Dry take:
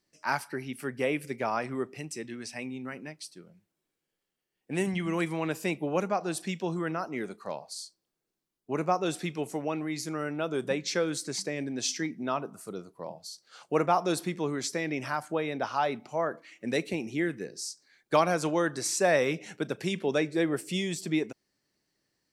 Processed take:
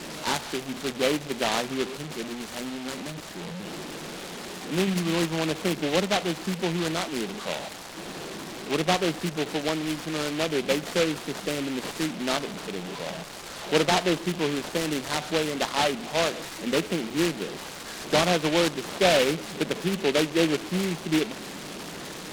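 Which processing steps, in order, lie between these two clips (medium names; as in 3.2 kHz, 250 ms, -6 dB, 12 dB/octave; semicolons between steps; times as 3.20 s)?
one-bit delta coder 16 kbps, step -32.5 dBFS; Chebyshev band-pass 160–2100 Hz, order 3; in parallel at -8.5 dB: hysteresis with a dead band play -32.5 dBFS; on the sum: delay time shaken by noise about 2.4 kHz, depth 0.14 ms; trim +2.5 dB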